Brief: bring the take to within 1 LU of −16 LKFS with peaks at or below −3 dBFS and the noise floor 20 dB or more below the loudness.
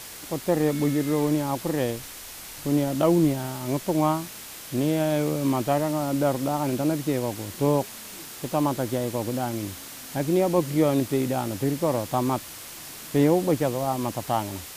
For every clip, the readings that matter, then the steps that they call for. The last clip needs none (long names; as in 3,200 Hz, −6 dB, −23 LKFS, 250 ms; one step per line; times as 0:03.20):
background noise floor −41 dBFS; target noise floor −46 dBFS; integrated loudness −25.5 LKFS; sample peak −9.0 dBFS; target loudness −16.0 LKFS
→ noise reduction from a noise print 6 dB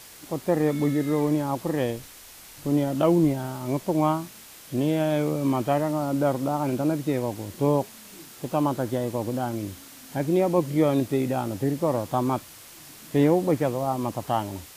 background noise floor −46 dBFS; integrated loudness −25.5 LKFS; sample peak −9.0 dBFS; target loudness −16.0 LKFS
→ level +9.5 dB
brickwall limiter −3 dBFS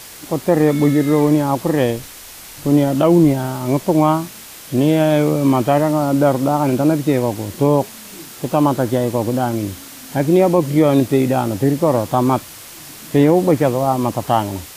integrated loudness −16.5 LKFS; sample peak −3.0 dBFS; background noise floor −37 dBFS